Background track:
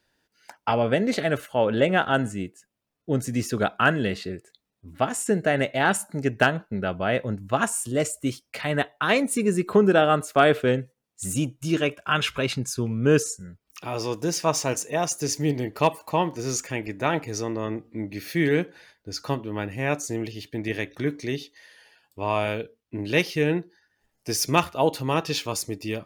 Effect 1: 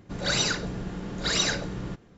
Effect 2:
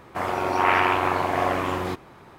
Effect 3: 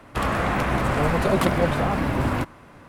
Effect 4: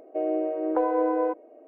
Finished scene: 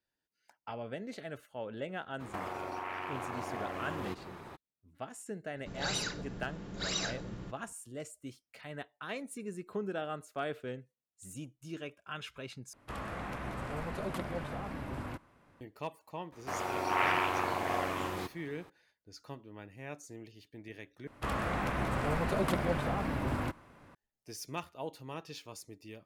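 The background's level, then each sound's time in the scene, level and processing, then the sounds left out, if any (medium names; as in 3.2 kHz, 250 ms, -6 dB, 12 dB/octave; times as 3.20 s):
background track -19 dB
2.19 s: add 2 -0.5 dB, fades 0.02 s + compression 16:1, threshold -34 dBFS
5.56 s: add 1 -10 dB
12.73 s: replace with 3 -17 dB + resampled via 32 kHz
16.32 s: add 2 -10.5 dB + treble shelf 3 kHz +7 dB
21.07 s: replace with 3 -10.5 dB
not used: 4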